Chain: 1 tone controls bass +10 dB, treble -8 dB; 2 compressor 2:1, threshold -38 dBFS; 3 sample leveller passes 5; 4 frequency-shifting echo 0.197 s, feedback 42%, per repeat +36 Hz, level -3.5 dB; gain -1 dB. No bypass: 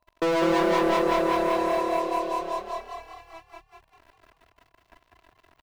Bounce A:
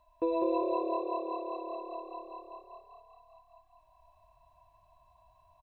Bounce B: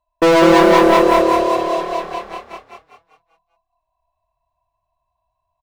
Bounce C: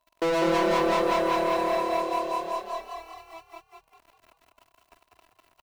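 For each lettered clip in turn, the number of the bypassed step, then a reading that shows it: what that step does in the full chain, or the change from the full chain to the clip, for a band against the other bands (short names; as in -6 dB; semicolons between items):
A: 3, 2 kHz band -14.5 dB; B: 2, mean gain reduction 5.0 dB; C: 1, 250 Hz band -2.0 dB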